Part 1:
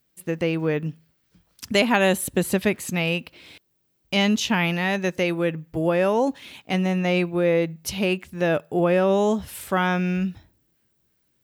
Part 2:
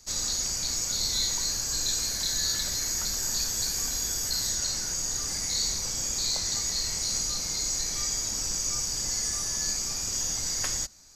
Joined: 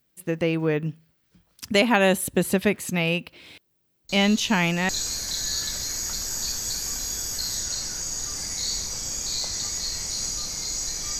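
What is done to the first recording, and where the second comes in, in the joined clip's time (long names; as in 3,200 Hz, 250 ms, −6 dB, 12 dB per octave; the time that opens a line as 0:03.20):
part 1
0:04.09: mix in part 2 from 0:01.01 0.80 s −11.5 dB
0:04.89: continue with part 2 from 0:01.81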